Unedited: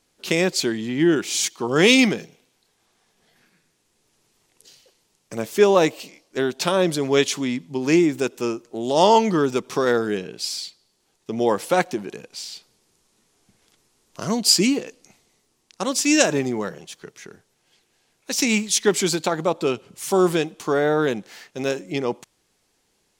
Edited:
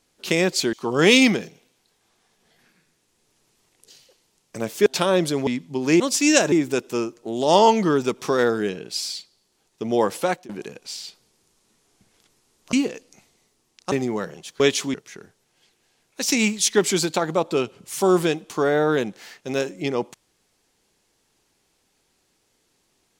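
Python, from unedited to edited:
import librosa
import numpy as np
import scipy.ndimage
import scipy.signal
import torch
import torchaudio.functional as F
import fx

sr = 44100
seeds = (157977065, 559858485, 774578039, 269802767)

y = fx.edit(x, sr, fx.cut(start_s=0.73, length_s=0.77),
    fx.cut(start_s=5.63, length_s=0.89),
    fx.move(start_s=7.13, length_s=0.34, to_s=17.04),
    fx.fade_out_to(start_s=11.64, length_s=0.33, floor_db=-22.0),
    fx.cut(start_s=14.21, length_s=0.44),
    fx.move(start_s=15.84, length_s=0.52, to_s=8.0), tone=tone)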